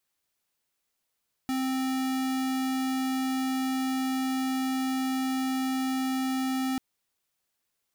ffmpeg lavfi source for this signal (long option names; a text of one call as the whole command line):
ffmpeg -f lavfi -i "aevalsrc='0.0376*(2*lt(mod(262*t,1),0.5)-1)':duration=5.29:sample_rate=44100" out.wav